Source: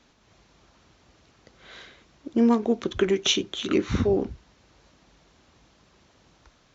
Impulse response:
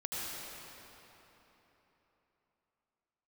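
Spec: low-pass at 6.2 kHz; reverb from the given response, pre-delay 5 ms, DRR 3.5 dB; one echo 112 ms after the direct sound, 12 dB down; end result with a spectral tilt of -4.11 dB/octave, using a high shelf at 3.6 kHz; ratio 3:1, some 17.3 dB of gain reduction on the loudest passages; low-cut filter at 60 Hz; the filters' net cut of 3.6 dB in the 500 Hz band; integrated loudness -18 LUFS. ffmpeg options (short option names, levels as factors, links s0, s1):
-filter_complex "[0:a]highpass=60,lowpass=6200,equalizer=f=500:t=o:g=-5,highshelf=f=3600:g=5,acompressor=threshold=0.00794:ratio=3,aecho=1:1:112:0.251,asplit=2[s0][s1];[1:a]atrim=start_sample=2205,adelay=5[s2];[s1][s2]afir=irnorm=-1:irlink=0,volume=0.422[s3];[s0][s3]amix=inputs=2:normalize=0,volume=13.3"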